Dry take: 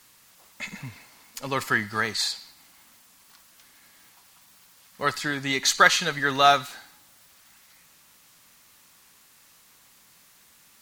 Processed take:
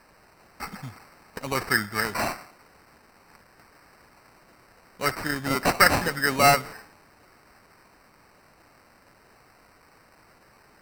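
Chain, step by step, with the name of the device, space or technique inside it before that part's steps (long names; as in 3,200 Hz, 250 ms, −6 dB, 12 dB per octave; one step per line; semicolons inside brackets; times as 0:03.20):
crushed at another speed (tape speed factor 0.5×; decimation without filtering 26×; tape speed factor 2×)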